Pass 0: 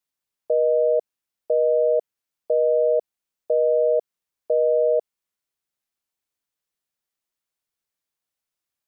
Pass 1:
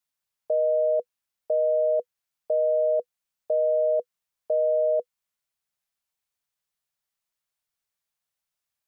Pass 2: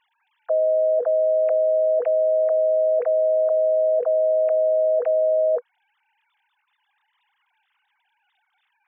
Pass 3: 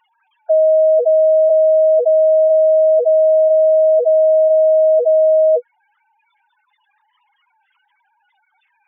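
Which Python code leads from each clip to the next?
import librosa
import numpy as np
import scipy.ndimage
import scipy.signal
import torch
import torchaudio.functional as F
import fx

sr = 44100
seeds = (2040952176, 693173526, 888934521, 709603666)

y1 = fx.peak_eq(x, sr, hz=310.0, db=-10.5, octaves=0.62)
y1 = fx.notch(y1, sr, hz=490.0, q=12.0)
y2 = fx.sine_speech(y1, sr)
y2 = y2 + 10.0 ** (-16.0 / 20.0) * np.pad(y2, (int(564 * sr / 1000.0), 0))[:len(y2)]
y2 = fx.env_flatten(y2, sr, amount_pct=100)
y2 = y2 * 10.0 ** (1.5 / 20.0)
y3 = fx.spec_expand(y2, sr, power=3.5)
y3 = y3 * 10.0 ** (8.5 / 20.0)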